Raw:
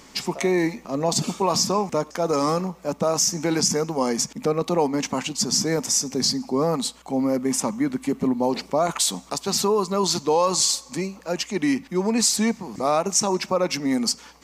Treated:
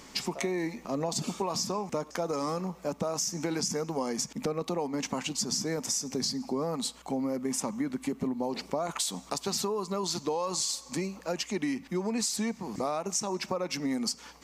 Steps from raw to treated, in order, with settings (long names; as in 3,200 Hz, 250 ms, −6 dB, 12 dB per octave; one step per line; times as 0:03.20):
downward compressor, threshold −26 dBFS, peak gain reduction 10.5 dB
level −2 dB